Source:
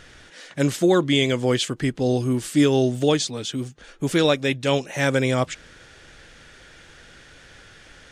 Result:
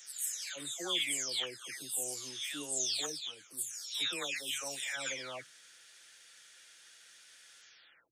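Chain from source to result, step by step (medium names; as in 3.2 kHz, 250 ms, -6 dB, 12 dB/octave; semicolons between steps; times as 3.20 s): delay that grows with frequency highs early, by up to 503 ms; differentiator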